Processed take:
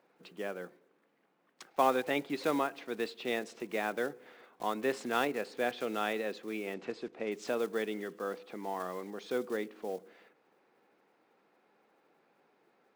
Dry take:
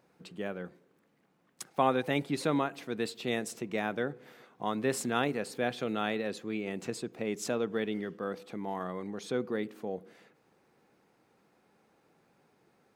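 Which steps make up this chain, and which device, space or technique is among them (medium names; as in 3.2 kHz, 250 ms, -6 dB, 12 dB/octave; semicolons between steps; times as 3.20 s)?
early digital voice recorder (band-pass 300–3800 Hz; block-companded coder 5-bit); 6.74–7.32 s: distance through air 99 m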